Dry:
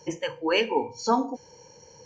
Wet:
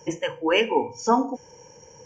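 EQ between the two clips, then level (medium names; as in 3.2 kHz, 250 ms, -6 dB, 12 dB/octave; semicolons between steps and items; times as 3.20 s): Butterworth band-stop 4.1 kHz, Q 2.3; +3.0 dB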